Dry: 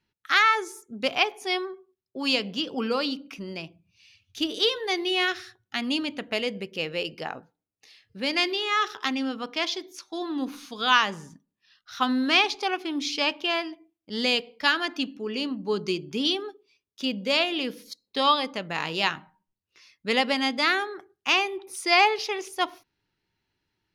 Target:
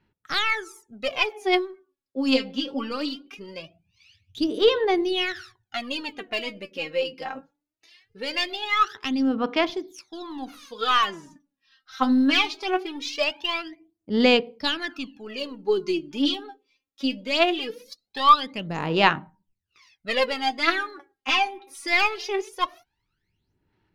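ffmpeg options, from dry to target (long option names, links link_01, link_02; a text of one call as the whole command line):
ffmpeg -i in.wav -af "aeval=exprs='0.501*(cos(1*acos(clip(val(0)/0.501,-1,1)))-cos(1*PI/2))+0.02*(cos(4*acos(clip(val(0)/0.501,-1,1)))-cos(4*PI/2))':channel_layout=same,highshelf=frequency=5100:gain=-7.5,aphaser=in_gain=1:out_gain=1:delay=3.8:decay=0.78:speed=0.21:type=sinusoidal,volume=-3dB" out.wav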